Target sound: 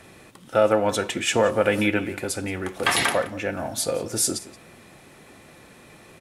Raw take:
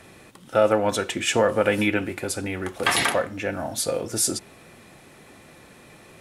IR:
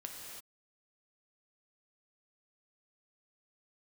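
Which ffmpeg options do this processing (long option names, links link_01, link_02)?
-filter_complex "[0:a]asplit=2[link_01][link_02];[link_02]adelay=174.9,volume=-17dB,highshelf=frequency=4000:gain=-3.94[link_03];[link_01][link_03]amix=inputs=2:normalize=0"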